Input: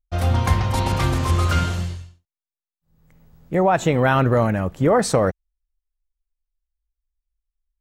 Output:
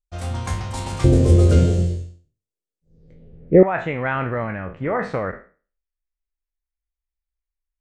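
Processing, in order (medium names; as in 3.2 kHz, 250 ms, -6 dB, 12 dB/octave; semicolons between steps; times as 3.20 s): spectral sustain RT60 0.38 s; low-pass sweep 8.3 kHz -> 2.1 kHz, 2.78–3.46 s; 1.04–3.63 s: resonant low shelf 690 Hz +13.5 dB, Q 3; trim -8.5 dB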